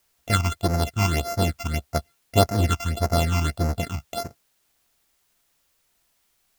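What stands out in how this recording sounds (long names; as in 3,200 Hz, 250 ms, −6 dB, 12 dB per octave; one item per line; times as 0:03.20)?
a buzz of ramps at a fixed pitch in blocks of 64 samples
phaser sweep stages 8, 1.7 Hz, lowest notch 500–3,300 Hz
a quantiser's noise floor 12 bits, dither triangular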